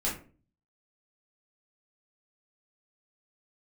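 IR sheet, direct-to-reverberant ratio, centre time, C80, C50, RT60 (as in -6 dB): -6.5 dB, 29 ms, 13.0 dB, 7.0 dB, 0.40 s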